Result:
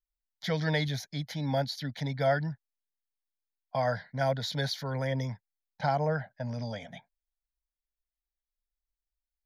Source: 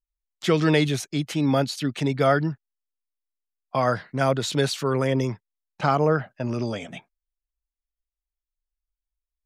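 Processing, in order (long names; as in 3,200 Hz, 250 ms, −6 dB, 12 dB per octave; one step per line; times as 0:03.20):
phaser with its sweep stopped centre 1,800 Hz, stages 8
level −4 dB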